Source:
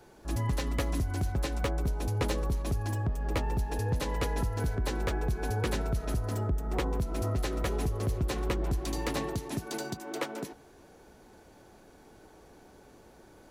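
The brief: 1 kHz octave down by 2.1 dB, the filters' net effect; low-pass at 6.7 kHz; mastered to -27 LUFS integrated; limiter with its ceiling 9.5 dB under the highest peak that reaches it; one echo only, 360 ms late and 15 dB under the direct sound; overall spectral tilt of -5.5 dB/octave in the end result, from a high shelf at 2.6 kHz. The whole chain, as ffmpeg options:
-af "lowpass=6700,equalizer=f=1000:t=o:g=-3.5,highshelf=f=2600:g=5.5,alimiter=level_in=1.68:limit=0.0631:level=0:latency=1,volume=0.596,aecho=1:1:360:0.178,volume=3.16"

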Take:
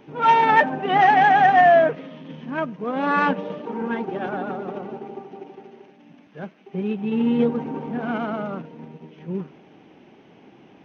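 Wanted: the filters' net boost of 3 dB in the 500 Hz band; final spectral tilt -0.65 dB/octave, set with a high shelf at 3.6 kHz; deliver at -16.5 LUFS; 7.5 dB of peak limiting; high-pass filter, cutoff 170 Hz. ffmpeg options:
-af "highpass=170,equalizer=f=500:t=o:g=4.5,highshelf=f=3600:g=-3.5,volume=2,alimiter=limit=0.531:level=0:latency=1"

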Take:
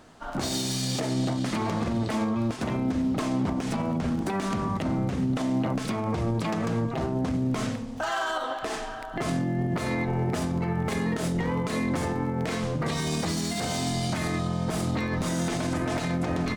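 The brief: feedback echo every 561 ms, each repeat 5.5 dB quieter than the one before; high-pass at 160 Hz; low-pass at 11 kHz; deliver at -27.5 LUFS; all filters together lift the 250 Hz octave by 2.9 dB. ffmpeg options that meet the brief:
-af "highpass=160,lowpass=11000,equalizer=f=250:t=o:g=4.5,aecho=1:1:561|1122|1683|2244|2805|3366|3927:0.531|0.281|0.149|0.079|0.0419|0.0222|0.0118,volume=0.794"

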